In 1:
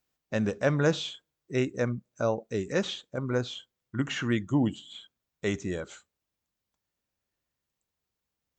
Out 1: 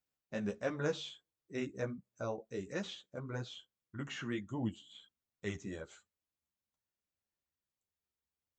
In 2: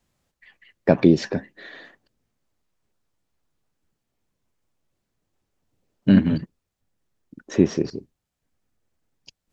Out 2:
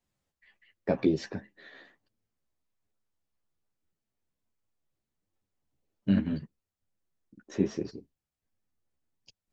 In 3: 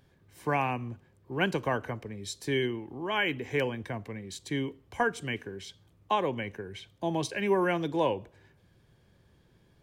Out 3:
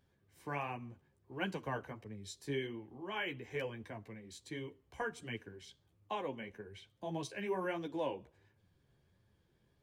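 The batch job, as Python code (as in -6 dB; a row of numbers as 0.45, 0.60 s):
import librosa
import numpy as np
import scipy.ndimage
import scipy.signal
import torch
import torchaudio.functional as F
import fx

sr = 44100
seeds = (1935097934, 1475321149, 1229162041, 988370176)

y = fx.chorus_voices(x, sr, voices=2, hz=1.4, base_ms=12, depth_ms=3.0, mix_pct=40)
y = F.gain(torch.from_numpy(y), -7.5).numpy()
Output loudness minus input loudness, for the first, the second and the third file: -11.0, -10.5, -10.5 LU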